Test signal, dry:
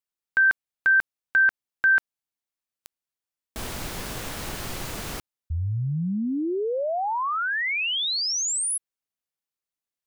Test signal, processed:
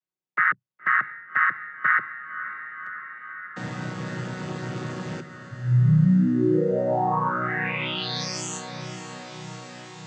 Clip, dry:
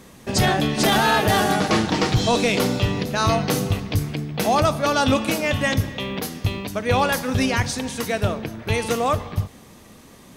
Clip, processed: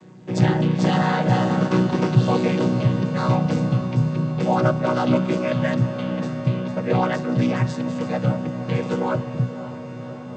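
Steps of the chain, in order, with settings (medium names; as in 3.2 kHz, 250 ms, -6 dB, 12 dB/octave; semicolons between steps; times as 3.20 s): vocoder on a held chord major triad, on B2; on a send: echo that smears into a reverb 564 ms, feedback 75%, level -13 dB; on the sum: trim +1.5 dB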